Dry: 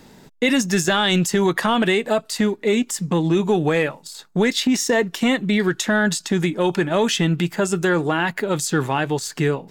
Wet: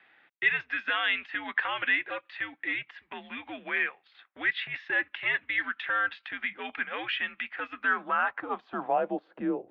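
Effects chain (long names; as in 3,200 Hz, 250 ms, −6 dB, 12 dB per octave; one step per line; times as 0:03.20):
single-sideband voice off tune −110 Hz 280–3,500 Hz
band-pass filter sweep 2,000 Hz → 480 Hz, 0:07.67–0:09.28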